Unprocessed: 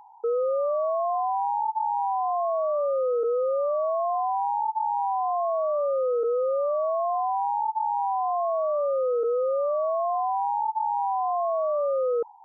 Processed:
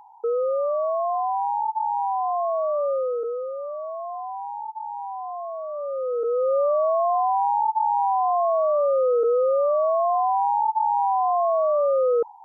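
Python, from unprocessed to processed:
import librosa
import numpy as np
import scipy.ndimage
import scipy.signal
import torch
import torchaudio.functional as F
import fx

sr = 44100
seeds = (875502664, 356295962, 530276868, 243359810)

y = fx.gain(x, sr, db=fx.line((2.92, 1.5), (3.54, -6.5), (5.68, -6.5), (6.57, 4.5)))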